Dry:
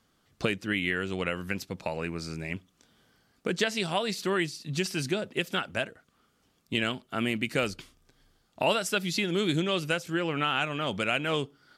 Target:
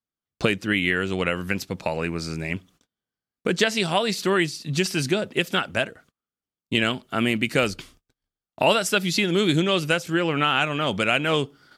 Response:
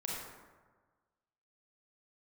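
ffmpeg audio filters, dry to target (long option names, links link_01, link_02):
-af "agate=range=-33dB:threshold=-58dB:ratio=16:detection=peak,volume=6.5dB"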